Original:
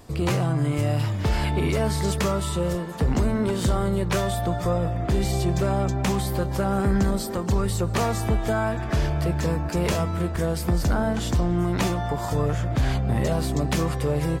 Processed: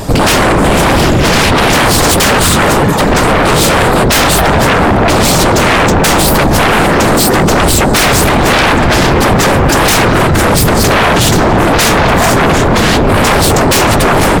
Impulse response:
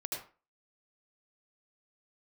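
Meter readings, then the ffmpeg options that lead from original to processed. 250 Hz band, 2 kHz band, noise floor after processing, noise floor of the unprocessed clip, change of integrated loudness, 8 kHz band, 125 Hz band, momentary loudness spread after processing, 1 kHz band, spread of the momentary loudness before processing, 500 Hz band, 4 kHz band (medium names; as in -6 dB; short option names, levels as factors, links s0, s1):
+14.5 dB, +24.0 dB, -9 dBFS, -29 dBFS, +16.5 dB, +22.5 dB, +11.0 dB, 1 LU, +21.0 dB, 2 LU, +16.5 dB, +23.0 dB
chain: -af "apsyclip=10.6,afftfilt=real='hypot(re,im)*cos(2*PI*random(0))':imag='hypot(re,im)*sin(2*PI*random(1))':win_size=512:overlap=0.75,aeval=exprs='1.41*sin(PI/2*7.08*val(0)/1.41)':c=same,volume=0.398"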